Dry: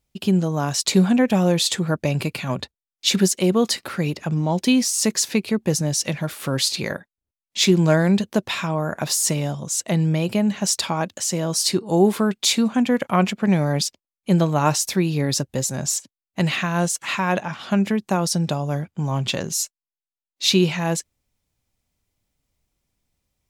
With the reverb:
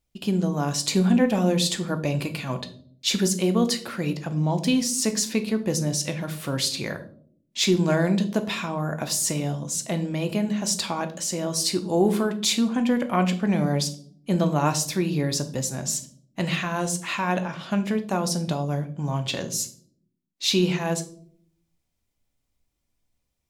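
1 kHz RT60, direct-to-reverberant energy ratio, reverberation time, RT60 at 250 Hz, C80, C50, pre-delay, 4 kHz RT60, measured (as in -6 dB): 0.45 s, 7.0 dB, 0.55 s, 1.0 s, 17.5 dB, 14.0 dB, 3 ms, 0.40 s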